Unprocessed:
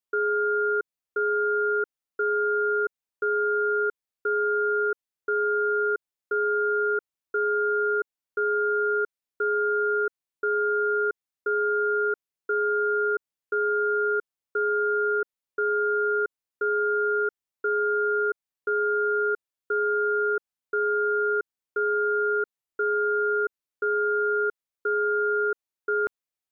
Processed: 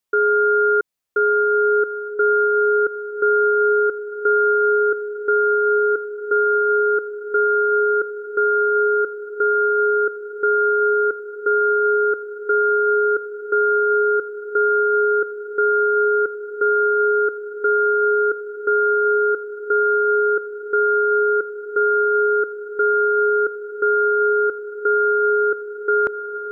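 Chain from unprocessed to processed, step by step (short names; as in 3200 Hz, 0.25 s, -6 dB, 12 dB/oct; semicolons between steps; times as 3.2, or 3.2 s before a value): diffused feedback echo 1.515 s, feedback 74%, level -11 dB; gain +8 dB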